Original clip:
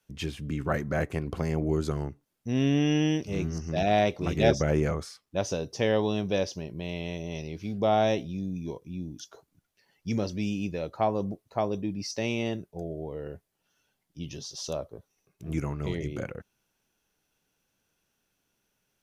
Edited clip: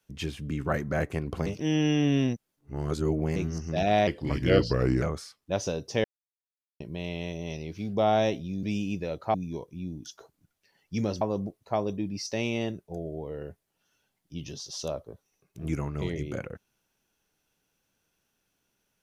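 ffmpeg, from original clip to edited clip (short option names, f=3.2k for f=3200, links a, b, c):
-filter_complex "[0:a]asplit=10[a][b][c][d][e][f][g][h][i][j];[a]atrim=end=1.462[k];[b]atrim=start=1.458:end=3.362,asetpts=PTS-STARTPTS,areverse[l];[c]atrim=start=3.358:end=4.074[m];[d]atrim=start=4.07:end=4.87,asetpts=PTS-STARTPTS,asetrate=37044,aresample=44100[n];[e]atrim=start=4.866:end=5.89,asetpts=PTS-STARTPTS,afade=t=out:st=1.02:d=0.004:c=hsin[o];[f]atrim=start=5.89:end=6.65,asetpts=PTS-STARTPTS,volume=0[p];[g]atrim=start=6.65:end=8.482,asetpts=PTS-STARTPTS,afade=t=in:d=0.004:c=hsin[q];[h]atrim=start=10.348:end=11.062[r];[i]atrim=start=8.478:end=10.352[s];[j]atrim=start=11.058[t];[k][l]acrossfade=d=0.004:c1=hsin:c2=hsin[u];[u][m]acrossfade=d=0.004:c1=hsin:c2=hsin[v];[v][n]acrossfade=d=0.004:c1=hsin:c2=hsin[w];[o][p][q]concat=n=3:v=0:a=1[x];[w][x]acrossfade=d=0.004:c1=hsin:c2=hsin[y];[y][r]acrossfade=d=0.004:c1=hsin:c2=hsin[z];[z][s]acrossfade=d=0.004:c1=hsin:c2=hsin[aa];[aa][t]acrossfade=d=0.004:c1=hsin:c2=hsin"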